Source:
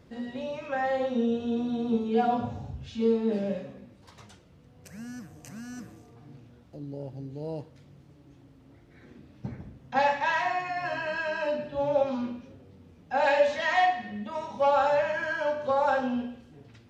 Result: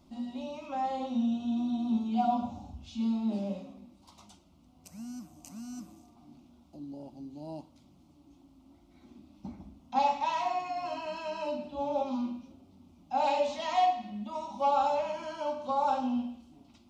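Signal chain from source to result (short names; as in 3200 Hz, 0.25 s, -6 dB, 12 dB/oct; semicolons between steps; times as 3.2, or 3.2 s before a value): bell 490 Hz -3.5 dB 0.97 oct; fixed phaser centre 460 Hz, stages 6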